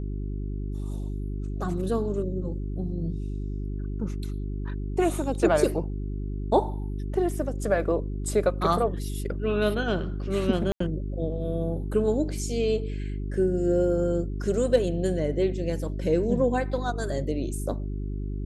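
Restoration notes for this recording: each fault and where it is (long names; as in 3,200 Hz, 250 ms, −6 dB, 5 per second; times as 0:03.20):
mains hum 50 Hz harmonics 8 −31 dBFS
0:10.72–0:10.80: drop-out 84 ms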